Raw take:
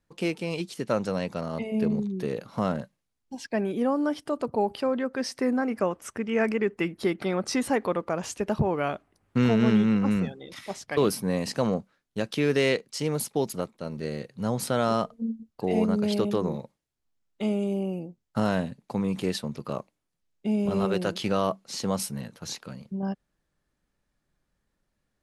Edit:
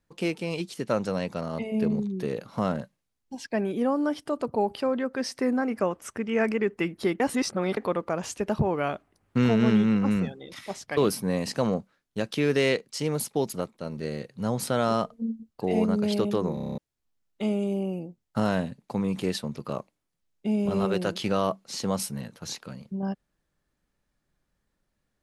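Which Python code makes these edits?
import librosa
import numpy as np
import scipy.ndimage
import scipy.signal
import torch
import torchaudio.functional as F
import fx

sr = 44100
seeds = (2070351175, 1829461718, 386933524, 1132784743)

y = fx.edit(x, sr, fx.reverse_span(start_s=7.2, length_s=0.57),
    fx.stutter_over(start_s=16.54, slice_s=0.03, count=8), tone=tone)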